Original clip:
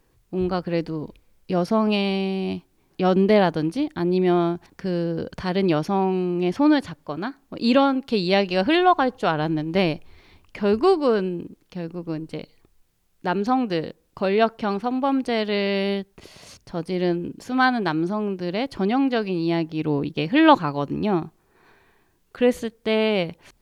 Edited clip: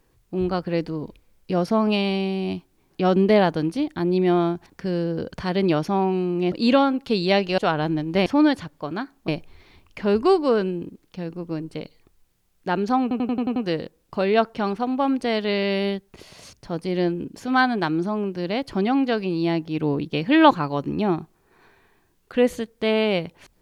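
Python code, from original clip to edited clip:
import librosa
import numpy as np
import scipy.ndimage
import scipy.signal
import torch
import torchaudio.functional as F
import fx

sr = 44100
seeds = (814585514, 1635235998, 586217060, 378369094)

y = fx.edit(x, sr, fx.move(start_s=6.52, length_s=1.02, to_s=9.86),
    fx.cut(start_s=8.6, length_s=0.58),
    fx.stutter(start_s=13.6, slice_s=0.09, count=7), tone=tone)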